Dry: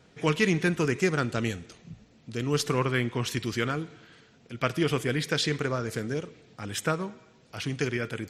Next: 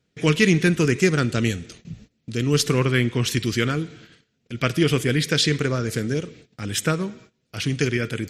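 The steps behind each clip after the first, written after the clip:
noise gate −52 dBFS, range −20 dB
parametric band 880 Hz −10 dB 1.4 octaves
level +8.5 dB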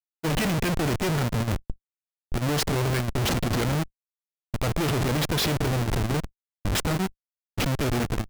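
comparator with hysteresis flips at −25 dBFS
noise gate −31 dBFS, range −18 dB
output level in coarse steps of 12 dB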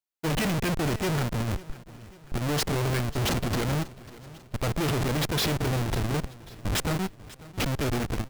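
in parallel at +2.5 dB: brickwall limiter −25 dBFS, peak gain reduction 7 dB
on the sum: gain into a clipping stage and back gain 19.5 dB
repeating echo 544 ms, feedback 50%, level −19 dB
level −6 dB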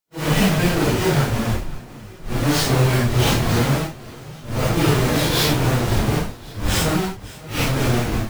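random phases in long frames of 200 ms
level +8.5 dB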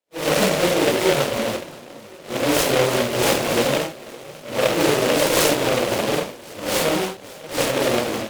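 in parallel at −7 dB: decimation without filtering 35×
on the sum: loudspeaker in its box 330–6,200 Hz, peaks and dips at 550 Hz +10 dB, 1,700 Hz −8 dB, 4,100 Hz +5 dB
short delay modulated by noise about 2,000 Hz, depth 0.11 ms

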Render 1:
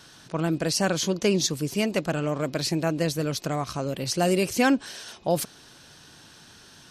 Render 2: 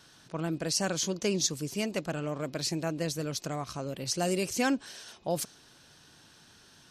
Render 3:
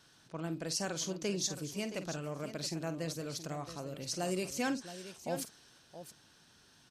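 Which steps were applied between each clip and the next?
dynamic equaliser 6,700 Hz, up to +6 dB, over −42 dBFS, Q 1.2; level −7 dB
multi-tap delay 49/672 ms −12/−12 dB; level −6.5 dB

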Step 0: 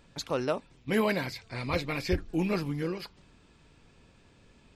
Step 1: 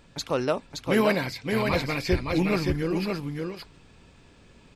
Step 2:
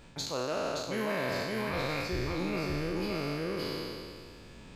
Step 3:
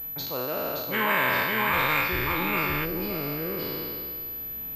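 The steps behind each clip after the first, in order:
single-tap delay 570 ms −4 dB; level +4 dB
peak hold with a decay on every bin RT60 2.07 s; reversed playback; downward compressor 5 to 1, threshold −31 dBFS, peak gain reduction 15 dB; reversed playback
gain on a spectral selection 0:00.93–0:02.85, 810–3,800 Hz +11 dB; switching amplifier with a slow clock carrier 12,000 Hz; level +2 dB

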